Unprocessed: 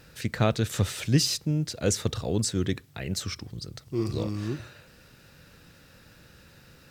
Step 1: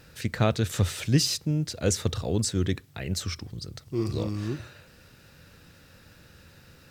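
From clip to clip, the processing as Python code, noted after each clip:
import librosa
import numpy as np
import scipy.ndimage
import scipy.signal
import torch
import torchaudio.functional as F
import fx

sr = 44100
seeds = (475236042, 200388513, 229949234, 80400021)

y = fx.peak_eq(x, sr, hz=86.0, db=6.0, octaves=0.24)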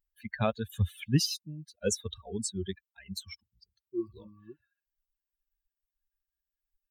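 y = fx.bin_expand(x, sr, power=3.0)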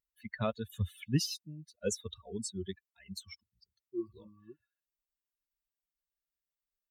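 y = fx.notch_comb(x, sr, f0_hz=800.0)
y = y * librosa.db_to_amplitude(-3.5)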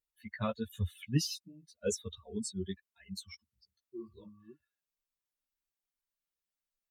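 y = fx.ensemble(x, sr)
y = y * librosa.db_to_amplitude(2.5)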